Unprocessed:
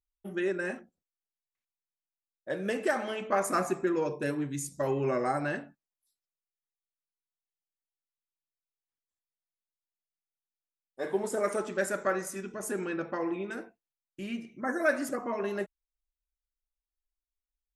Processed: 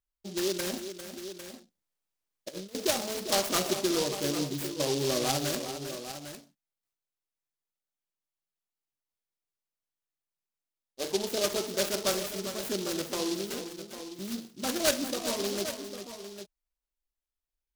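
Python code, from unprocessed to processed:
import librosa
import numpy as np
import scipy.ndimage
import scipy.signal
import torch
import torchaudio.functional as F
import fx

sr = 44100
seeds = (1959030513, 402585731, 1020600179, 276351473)

p1 = fx.over_compress(x, sr, threshold_db=-39.0, ratio=-0.5, at=(0.73, 2.75))
p2 = p1 + fx.echo_multitap(p1, sr, ms=(400, 802), db=(-10.0, -11.0), dry=0)
y = fx.noise_mod_delay(p2, sr, seeds[0], noise_hz=4400.0, depth_ms=0.16)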